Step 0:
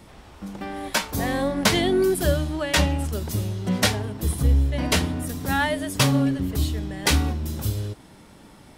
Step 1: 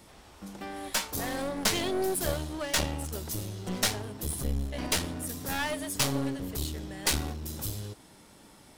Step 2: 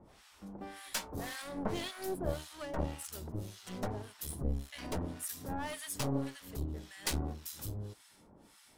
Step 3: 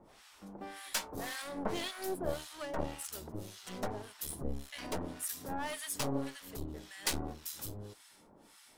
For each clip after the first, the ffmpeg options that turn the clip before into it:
ffmpeg -i in.wav -af "aeval=exprs='clip(val(0),-1,0.0398)':channel_layout=same,bass=frequency=250:gain=-4,treble=frequency=4000:gain=6,volume=-5.5dB" out.wav
ffmpeg -i in.wav -filter_complex "[0:a]acrossover=split=1100[link_01][link_02];[link_01]aeval=exprs='val(0)*(1-1/2+1/2*cos(2*PI*1.8*n/s))':channel_layout=same[link_03];[link_02]aeval=exprs='val(0)*(1-1/2-1/2*cos(2*PI*1.8*n/s))':channel_layout=same[link_04];[link_03][link_04]amix=inputs=2:normalize=0,volume=-2dB" out.wav
ffmpeg -i in.wav -af "equalizer=frequency=70:width=0.39:gain=-9,volume=2dB" out.wav

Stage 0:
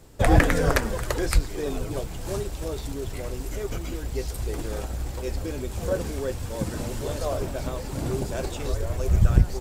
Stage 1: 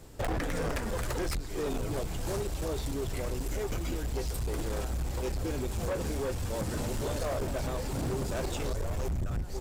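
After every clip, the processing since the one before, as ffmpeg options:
ffmpeg -i in.wav -af "acompressor=threshold=-24dB:ratio=4,volume=28.5dB,asoftclip=hard,volume=-28.5dB" out.wav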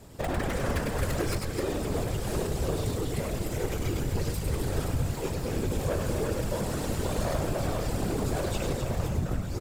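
ffmpeg -i in.wav -af "equalizer=frequency=6000:width=6.3:gain=-2.5,aecho=1:1:100|260|516|925.6|1581:0.631|0.398|0.251|0.158|0.1,afftfilt=real='hypot(re,im)*cos(2*PI*random(0))':imag='hypot(re,im)*sin(2*PI*random(1))':win_size=512:overlap=0.75,volume=7dB" out.wav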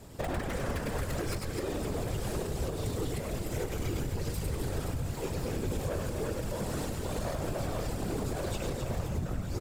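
ffmpeg -i in.wav -af "alimiter=limit=-23.5dB:level=0:latency=1:release=271" out.wav

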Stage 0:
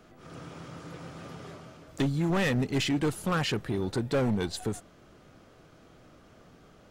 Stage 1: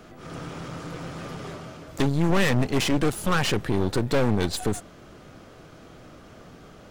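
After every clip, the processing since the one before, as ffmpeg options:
ffmpeg -i in.wav -af "aeval=exprs='clip(val(0),-1,0.00708)':channel_layout=same,volume=8.5dB" out.wav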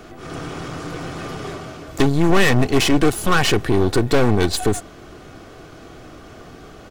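ffmpeg -i in.wav -af "aecho=1:1:2.7:0.33,volume=6.5dB" out.wav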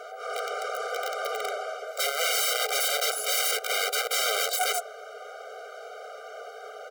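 ffmpeg -i in.wav -filter_complex "[0:a]acrossover=split=530|1400[link_01][link_02][link_03];[link_02]acontrast=74[link_04];[link_01][link_04][link_03]amix=inputs=3:normalize=0,aeval=exprs='(mod(7.5*val(0)+1,2)-1)/7.5':channel_layout=same,afftfilt=real='re*eq(mod(floor(b*sr/1024/400),2),1)':imag='im*eq(mod(floor(b*sr/1024/400),2),1)':win_size=1024:overlap=0.75" out.wav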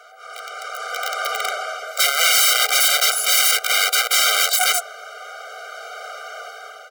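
ffmpeg -i in.wav -af "highpass=1000,dynaudnorm=framelen=380:gausssize=5:maxgain=14dB" out.wav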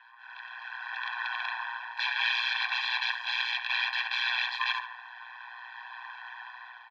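ffmpeg -i in.wav -filter_complex "[0:a]asplit=2[link_01][link_02];[link_02]adelay=70,lowpass=frequency=2400:poles=1,volume=-8dB,asplit=2[link_03][link_04];[link_04]adelay=70,lowpass=frequency=2400:poles=1,volume=0.54,asplit=2[link_05][link_06];[link_06]adelay=70,lowpass=frequency=2400:poles=1,volume=0.54,asplit=2[link_07][link_08];[link_08]adelay=70,lowpass=frequency=2400:poles=1,volume=0.54,asplit=2[link_09][link_10];[link_10]adelay=70,lowpass=frequency=2400:poles=1,volume=0.54,asplit=2[link_11][link_12];[link_12]adelay=70,lowpass=frequency=2400:poles=1,volume=0.54[link_13];[link_01][link_03][link_05][link_07][link_09][link_11][link_13]amix=inputs=7:normalize=0,tremolo=f=120:d=0.71,highpass=frequency=430:width_type=q:width=0.5412,highpass=frequency=430:width_type=q:width=1.307,lowpass=frequency=3600:width_type=q:width=0.5176,lowpass=frequency=3600:width_type=q:width=0.7071,lowpass=frequency=3600:width_type=q:width=1.932,afreqshift=300,volume=-6.5dB" out.wav

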